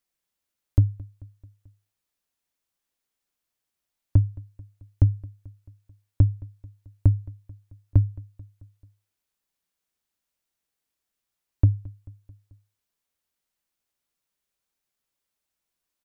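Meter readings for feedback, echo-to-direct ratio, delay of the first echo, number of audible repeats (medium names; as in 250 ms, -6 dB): 57%, -20.0 dB, 219 ms, 3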